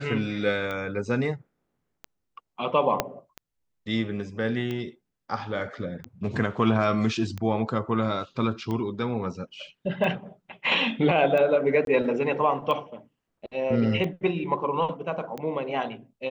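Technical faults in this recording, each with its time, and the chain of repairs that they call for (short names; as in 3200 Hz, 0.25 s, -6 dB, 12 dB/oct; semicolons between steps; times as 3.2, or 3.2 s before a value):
tick 45 rpm -20 dBFS
3 pop -7 dBFS
11.85–11.87 gap 22 ms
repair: de-click; interpolate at 11.85, 22 ms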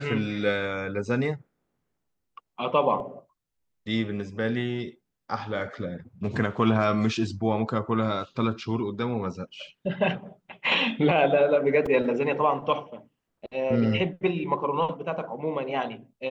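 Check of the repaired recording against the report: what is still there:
3 pop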